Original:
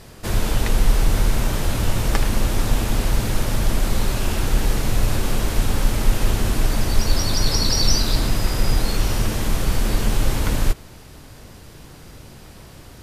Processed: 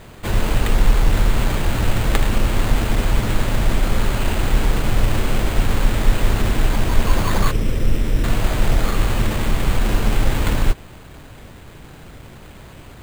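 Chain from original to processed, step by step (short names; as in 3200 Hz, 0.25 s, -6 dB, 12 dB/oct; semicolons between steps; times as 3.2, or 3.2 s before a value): 7.51–8.24 elliptic band-stop 540–8100 Hz; sample-and-hold 8×; gain +2 dB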